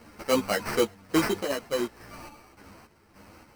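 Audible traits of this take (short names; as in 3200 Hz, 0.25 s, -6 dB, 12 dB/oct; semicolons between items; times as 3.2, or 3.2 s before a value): aliases and images of a low sample rate 3500 Hz, jitter 0%; random-step tremolo, depth 70%; a shimmering, thickened sound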